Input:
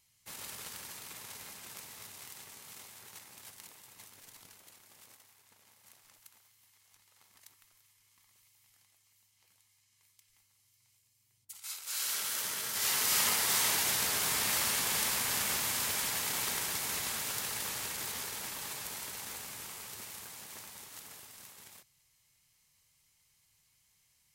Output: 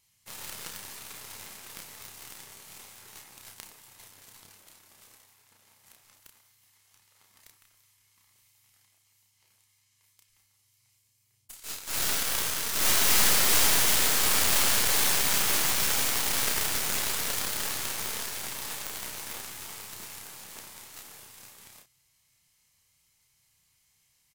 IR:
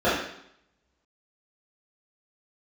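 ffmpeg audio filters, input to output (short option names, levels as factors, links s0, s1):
-filter_complex "[0:a]asplit=2[s0][s1];[s1]adelay=31,volume=0.708[s2];[s0][s2]amix=inputs=2:normalize=0,aeval=exprs='0.251*(cos(1*acos(clip(val(0)/0.251,-1,1)))-cos(1*PI/2))+0.1*(cos(8*acos(clip(val(0)/0.251,-1,1)))-cos(8*PI/2))':c=same"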